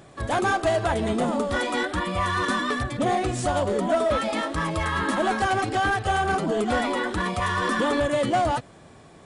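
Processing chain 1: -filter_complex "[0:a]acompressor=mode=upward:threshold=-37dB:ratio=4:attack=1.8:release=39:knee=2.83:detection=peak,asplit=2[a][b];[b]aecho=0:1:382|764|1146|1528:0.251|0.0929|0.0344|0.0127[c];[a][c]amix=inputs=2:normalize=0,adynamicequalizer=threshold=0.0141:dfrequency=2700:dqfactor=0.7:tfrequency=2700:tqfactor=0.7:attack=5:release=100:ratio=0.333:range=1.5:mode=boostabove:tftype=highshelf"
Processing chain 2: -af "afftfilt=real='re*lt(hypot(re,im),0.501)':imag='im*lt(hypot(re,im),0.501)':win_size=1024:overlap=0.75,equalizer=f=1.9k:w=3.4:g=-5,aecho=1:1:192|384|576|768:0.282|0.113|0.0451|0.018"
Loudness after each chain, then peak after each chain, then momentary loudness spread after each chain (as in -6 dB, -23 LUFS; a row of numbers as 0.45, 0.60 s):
-24.0, -26.5 LUFS; -13.5, -14.5 dBFS; 3, 2 LU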